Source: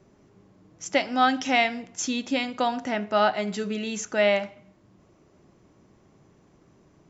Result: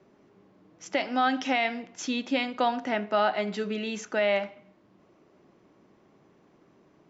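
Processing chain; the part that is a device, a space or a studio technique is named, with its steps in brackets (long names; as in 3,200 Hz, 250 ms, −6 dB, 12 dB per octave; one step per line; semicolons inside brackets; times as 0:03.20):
DJ mixer with the lows and highs turned down (three-way crossover with the lows and the highs turned down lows −13 dB, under 180 Hz, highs −16 dB, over 5,000 Hz; brickwall limiter −14.5 dBFS, peak gain reduction 6.5 dB)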